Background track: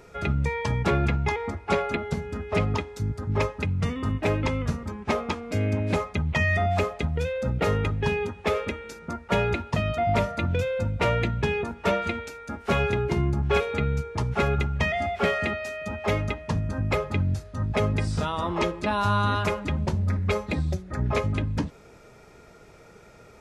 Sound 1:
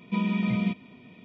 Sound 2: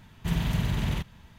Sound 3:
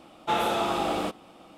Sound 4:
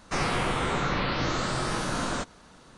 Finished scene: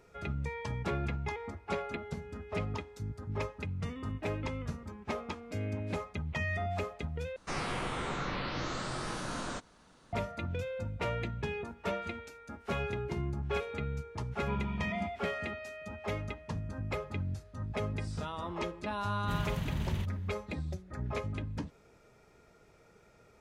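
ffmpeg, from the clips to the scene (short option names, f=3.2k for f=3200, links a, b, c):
-filter_complex "[0:a]volume=-11dB[a];[1:a]equalizer=f=960:t=o:w=1.2:g=9.5[b];[a]asplit=2[c][d];[c]atrim=end=7.364[e];[4:a]atrim=end=2.77,asetpts=PTS-STARTPTS,volume=-8.5dB[f];[d]atrim=start=10.126[g];[b]atrim=end=1.24,asetpts=PTS-STARTPTS,volume=-13.5dB,afade=t=in:d=0.004:c=hsin,afade=t=out:st=1.236:d=0.004:c=hsin,adelay=14350[h];[2:a]atrim=end=1.38,asetpts=PTS-STARTPTS,volume=-8.5dB,afade=t=in:d=0.004:c=hsin,afade=t=out:st=1.376:d=0.004:c=hsin,adelay=19030[i];[e][f]acrossfade=d=0.004:c1=hsin:c2=hsin[j];[j][g]acrossfade=d=0.004:c1=hsin:c2=hsin[k];[k][h][i]amix=inputs=3:normalize=0"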